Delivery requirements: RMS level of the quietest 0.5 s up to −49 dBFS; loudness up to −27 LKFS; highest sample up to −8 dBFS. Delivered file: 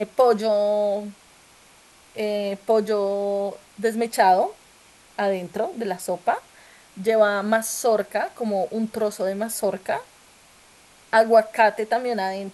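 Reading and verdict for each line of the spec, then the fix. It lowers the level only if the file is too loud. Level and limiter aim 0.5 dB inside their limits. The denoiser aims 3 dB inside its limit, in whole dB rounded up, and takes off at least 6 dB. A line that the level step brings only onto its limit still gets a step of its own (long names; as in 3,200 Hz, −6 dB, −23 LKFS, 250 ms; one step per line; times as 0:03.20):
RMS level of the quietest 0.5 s −53 dBFS: in spec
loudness −23.0 LKFS: out of spec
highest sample −5.0 dBFS: out of spec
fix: level −4.5 dB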